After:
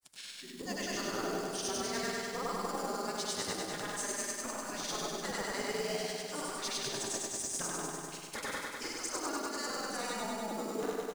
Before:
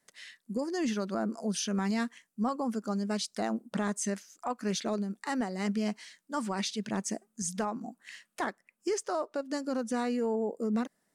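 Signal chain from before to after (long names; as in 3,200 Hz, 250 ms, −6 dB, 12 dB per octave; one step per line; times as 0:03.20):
on a send: flutter between parallel walls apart 7.9 metres, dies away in 0.56 s
on the sum: granular cloud, pitch spread up and down by 0 semitones
single-tap delay 104 ms −13.5 dB
gate on every frequency bin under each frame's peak −10 dB weak
high-shelf EQ 3,500 Hz +9.5 dB
reversed playback
downward compressor, threshold −37 dBFS, peak gain reduction 11.5 dB
reversed playback
low-shelf EQ 410 Hz +9 dB
floating-point word with a short mantissa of 2 bits
feedback echo at a low word length 99 ms, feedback 80%, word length 10 bits, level −3.5 dB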